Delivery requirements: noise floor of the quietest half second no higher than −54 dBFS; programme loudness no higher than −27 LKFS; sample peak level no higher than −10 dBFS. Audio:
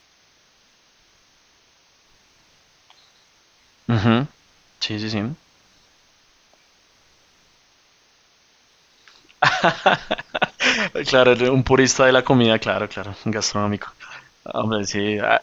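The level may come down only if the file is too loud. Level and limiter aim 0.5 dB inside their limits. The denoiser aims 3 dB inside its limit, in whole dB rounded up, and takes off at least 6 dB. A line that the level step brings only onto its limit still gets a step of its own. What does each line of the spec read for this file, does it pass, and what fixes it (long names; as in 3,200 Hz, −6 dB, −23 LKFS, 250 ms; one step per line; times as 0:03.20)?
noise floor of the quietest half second −58 dBFS: in spec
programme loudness −19.5 LKFS: out of spec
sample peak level −1.5 dBFS: out of spec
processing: level −8 dB
brickwall limiter −10.5 dBFS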